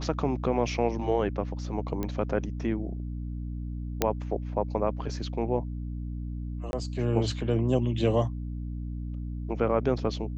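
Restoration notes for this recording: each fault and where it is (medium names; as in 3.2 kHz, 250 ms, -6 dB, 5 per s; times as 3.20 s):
hum 60 Hz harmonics 5 -34 dBFS
2.03 s: pop -18 dBFS
4.02 s: pop -8 dBFS
6.71–6.73 s: dropout 21 ms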